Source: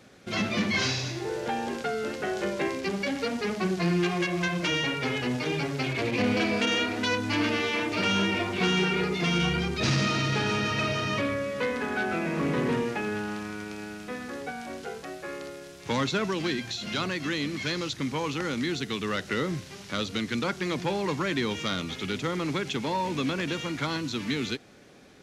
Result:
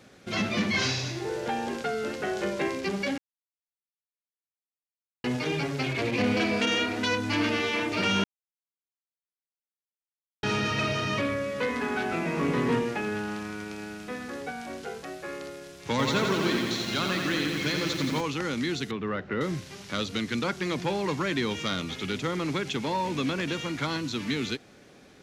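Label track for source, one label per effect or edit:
3.180000	5.240000	mute
8.240000	10.430000	mute
11.670000	12.790000	doubler 17 ms -6 dB
15.900000	18.210000	lo-fi delay 87 ms, feedback 80%, word length 8-bit, level -4 dB
18.910000	19.410000	LPF 1600 Hz

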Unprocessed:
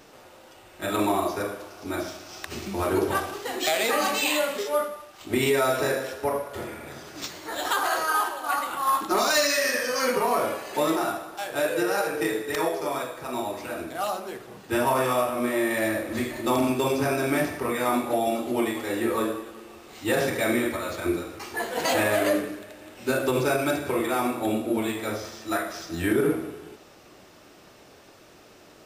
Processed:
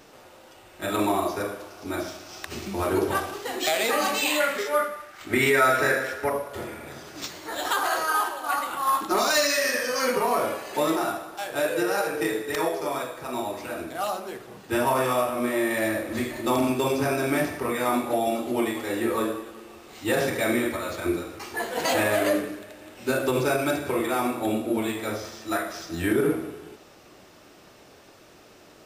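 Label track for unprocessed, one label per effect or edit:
4.400000	6.300000	band shelf 1700 Hz +8.5 dB 1 oct

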